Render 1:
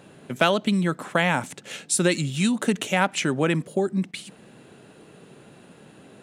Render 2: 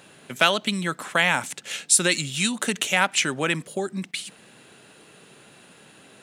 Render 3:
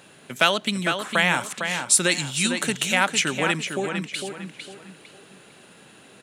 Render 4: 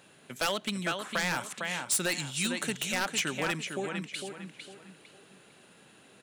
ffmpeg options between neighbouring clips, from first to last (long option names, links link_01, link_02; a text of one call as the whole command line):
ffmpeg -i in.wav -af "tiltshelf=frequency=970:gain=-6.5" out.wav
ffmpeg -i in.wav -filter_complex "[0:a]asplit=2[link_01][link_02];[link_02]adelay=454,lowpass=frequency=4600:poles=1,volume=-6.5dB,asplit=2[link_03][link_04];[link_04]adelay=454,lowpass=frequency=4600:poles=1,volume=0.33,asplit=2[link_05][link_06];[link_06]adelay=454,lowpass=frequency=4600:poles=1,volume=0.33,asplit=2[link_07][link_08];[link_08]adelay=454,lowpass=frequency=4600:poles=1,volume=0.33[link_09];[link_01][link_03][link_05][link_07][link_09]amix=inputs=5:normalize=0" out.wav
ffmpeg -i in.wav -af "aeval=exprs='0.224*(abs(mod(val(0)/0.224+3,4)-2)-1)':channel_layout=same,volume=-7.5dB" out.wav